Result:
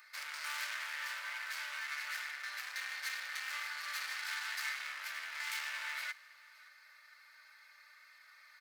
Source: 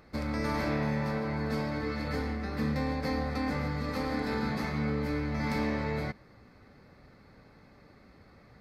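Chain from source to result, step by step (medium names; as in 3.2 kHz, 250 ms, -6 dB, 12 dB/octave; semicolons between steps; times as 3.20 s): comb 3.3 ms, depth 73%; overload inside the chain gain 34.5 dB; ladder high-pass 1.3 kHz, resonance 35%; treble shelf 5.8 kHz +11 dB; delay 567 ms -23 dB; trim +6.5 dB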